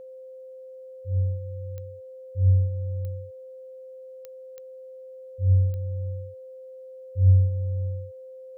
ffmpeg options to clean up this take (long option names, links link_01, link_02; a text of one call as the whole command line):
ffmpeg -i in.wav -af "adeclick=threshold=4,bandreject=frequency=520:width=30" out.wav